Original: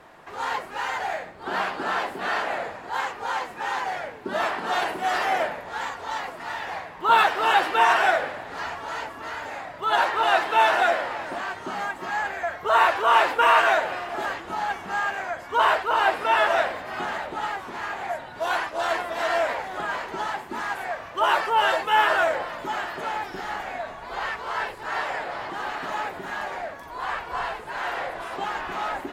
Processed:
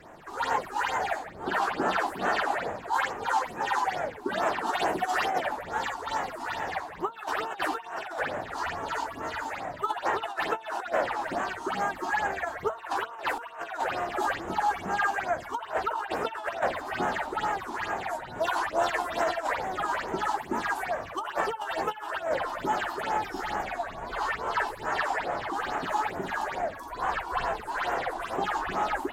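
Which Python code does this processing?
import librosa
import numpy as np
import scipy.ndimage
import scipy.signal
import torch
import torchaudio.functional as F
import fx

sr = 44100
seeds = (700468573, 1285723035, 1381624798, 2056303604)

y = fx.over_compress(x, sr, threshold_db=-25.0, ratio=-0.5)
y = fx.phaser_stages(y, sr, stages=6, low_hz=130.0, high_hz=4300.0, hz=2.3, feedback_pct=40)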